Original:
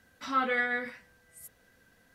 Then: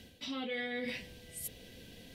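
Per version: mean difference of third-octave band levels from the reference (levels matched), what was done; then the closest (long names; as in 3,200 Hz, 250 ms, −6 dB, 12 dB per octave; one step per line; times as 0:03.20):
12.5 dB: drawn EQ curve 430 Hz 0 dB, 760 Hz −8 dB, 1,400 Hz −21 dB, 2,200 Hz −3 dB, 3,100 Hz +6 dB, 6,800 Hz −5 dB
reversed playback
downward compressor 6 to 1, threshold −51 dBFS, peak gain reduction 20 dB
reversed playback
level +14 dB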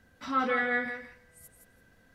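3.0 dB: spectral tilt −1.5 dB per octave
feedback echo with a high-pass in the loop 168 ms, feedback 15%, high-pass 420 Hz, level −6 dB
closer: second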